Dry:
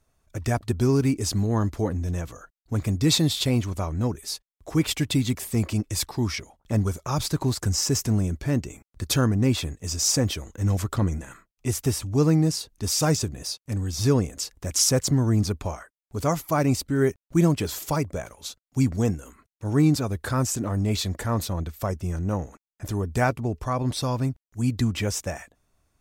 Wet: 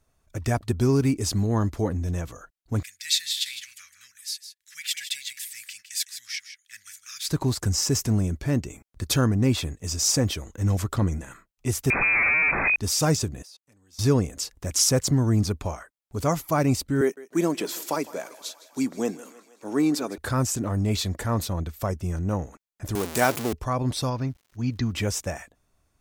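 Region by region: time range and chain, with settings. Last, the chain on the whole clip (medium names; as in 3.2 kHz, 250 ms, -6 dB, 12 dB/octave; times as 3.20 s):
2.83–7.29 s: elliptic high-pass 1.7 kHz, stop band 50 dB + delay 158 ms -11 dB
11.90–12.76 s: one-bit comparator + frequency inversion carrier 2.5 kHz + level flattener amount 70%
13.42–13.99 s: level held to a coarse grid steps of 24 dB + high-pass 570 Hz 6 dB/octave
17.01–20.18 s: high-pass 240 Hz 24 dB/octave + thinning echo 158 ms, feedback 71%, high-pass 350 Hz, level -17.5 dB
22.95–23.53 s: jump at every zero crossing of -25 dBFS + high-pass 230 Hz + treble shelf 5.2 kHz +10 dB
24.09–24.92 s: rippled Chebyshev low-pass 6.5 kHz, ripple 3 dB + crackle 350 per s -51 dBFS
whole clip: none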